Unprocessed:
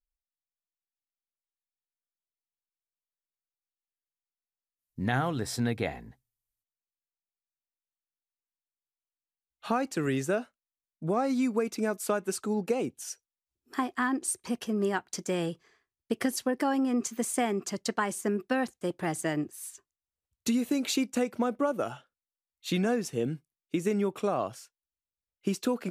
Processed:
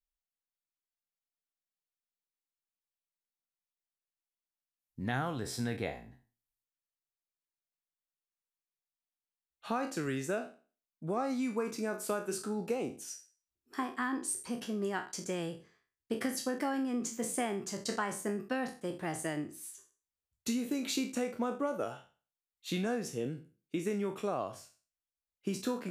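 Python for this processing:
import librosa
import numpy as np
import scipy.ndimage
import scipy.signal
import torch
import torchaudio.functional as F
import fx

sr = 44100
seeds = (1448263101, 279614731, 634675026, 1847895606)

y = fx.spec_trails(x, sr, decay_s=0.37)
y = y * librosa.db_to_amplitude(-6.5)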